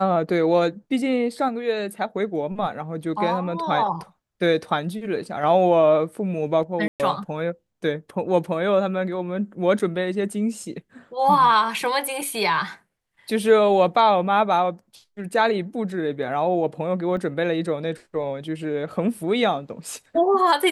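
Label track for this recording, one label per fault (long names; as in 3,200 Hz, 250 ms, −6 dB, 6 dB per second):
6.880000	7.000000	drop-out 118 ms
9.790000	9.800000	drop-out 5.9 ms
17.170000	17.170000	drop-out 2.2 ms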